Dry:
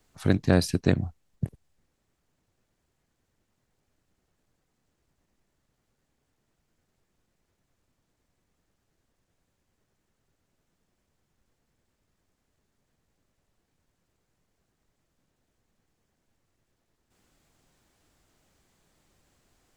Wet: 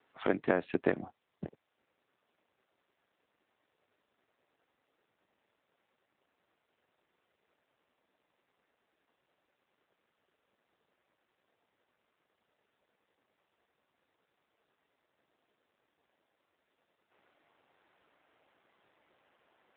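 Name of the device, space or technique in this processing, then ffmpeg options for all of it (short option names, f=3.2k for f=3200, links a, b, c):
voicemail: -af "highpass=430,lowpass=3k,acompressor=threshold=-29dB:ratio=6,volume=6dB" -ar 8000 -c:a libopencore_amrnb -b:a 7400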